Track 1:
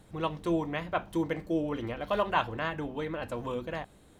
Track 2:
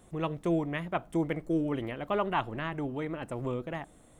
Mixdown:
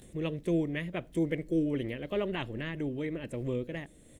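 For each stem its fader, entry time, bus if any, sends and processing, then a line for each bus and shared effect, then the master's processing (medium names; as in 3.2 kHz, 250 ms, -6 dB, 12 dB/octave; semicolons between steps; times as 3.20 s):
-17.0 dB, 0.00 s, no send, none
+0.5 dB, 19 ms, no send, none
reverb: none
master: high-order bell 1 kHz -13 dB 1.3 oct; upward compressor, threshold -47 dBFS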